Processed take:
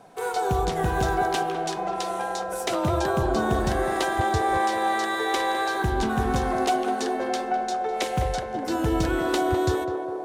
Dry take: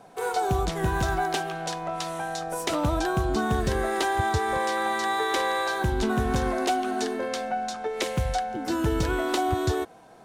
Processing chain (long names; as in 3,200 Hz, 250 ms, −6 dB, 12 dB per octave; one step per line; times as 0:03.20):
0:01.77–0:03.23: frequency shifter +25 Hz
feedback echo with a band-pass in the loop 204 ms, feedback 85%, band-pass 580 Hz, level −3.5 dB